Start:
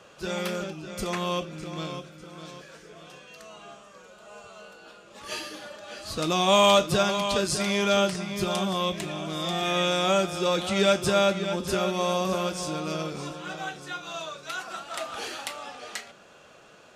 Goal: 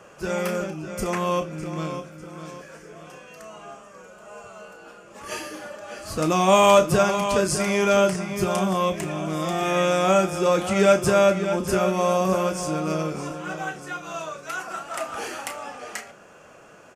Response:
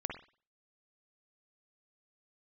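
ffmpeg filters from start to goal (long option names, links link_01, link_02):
-filter_complex "[0:a]equalizer=frequency=3800:width=2.2:gain=-14,asplit=2[link_01][link_02];[link_02]adelay=32,volume=-11.5dB[link_03];[link_01][link_03]amix=inputs=2:normalize=0,volume=4.5dB"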